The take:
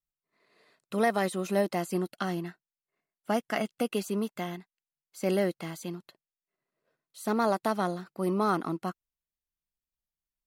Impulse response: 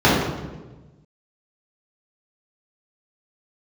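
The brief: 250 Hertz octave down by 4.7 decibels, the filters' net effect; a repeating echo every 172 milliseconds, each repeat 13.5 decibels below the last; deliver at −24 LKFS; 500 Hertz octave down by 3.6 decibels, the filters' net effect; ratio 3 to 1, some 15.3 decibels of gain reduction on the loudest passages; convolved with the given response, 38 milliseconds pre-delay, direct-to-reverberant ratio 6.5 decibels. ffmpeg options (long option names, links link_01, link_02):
-filter_complex "[0:a]equalizer=frequency=250:width_type=o:gain=-6,equalizer=frequency=500:width_type=o:gain=-3,acompressor=threshold=-46dB:ratio=3,aecho=1:1:172|344:0.211|0.0444,asplit=2[link_01][link_02];[1:a]atrim=start_sample=2205,adelay=38[link_03];[link_02][link_03]afir=irnorm=-1:irlink=0,volume=-32dB[link_04];[link_01][link_04]amix=inputs=2:normalize=0,volume=20.5dB"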